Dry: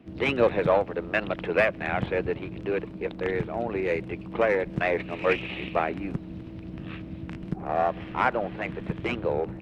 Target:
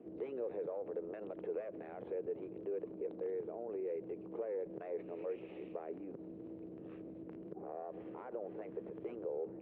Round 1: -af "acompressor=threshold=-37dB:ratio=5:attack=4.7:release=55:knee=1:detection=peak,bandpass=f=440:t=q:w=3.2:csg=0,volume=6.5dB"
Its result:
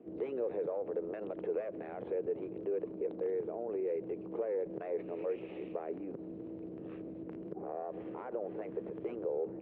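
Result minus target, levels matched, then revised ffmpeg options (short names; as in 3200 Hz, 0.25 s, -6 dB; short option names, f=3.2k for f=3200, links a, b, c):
compressor: peak gain reduction -5 dB
-af "acompressor=threshold=-43dB:ratio=5:attack=4.7:release=55:knee=1:detection=peak,bandpass=f=440:t=q:w=3.2:csg=0,volume=6.5dB"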